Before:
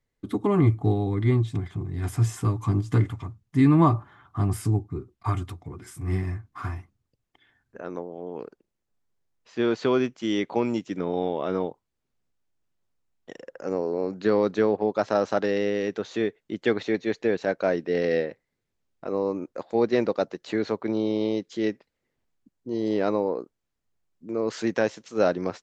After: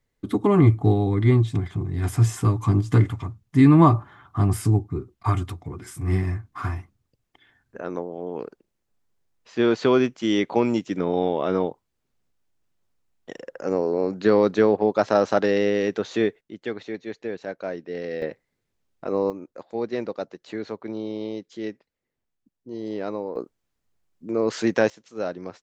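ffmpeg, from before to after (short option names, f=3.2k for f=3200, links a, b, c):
-af "asetnsamples=n=441:p=0,asendcmd='16.41 volume volume -7dB;18.22 volume volume 3dB;19.3 volume volume -5.5dB;23.36 volume volume 4dB;24.9 volume volume -7dB',volume=4dB"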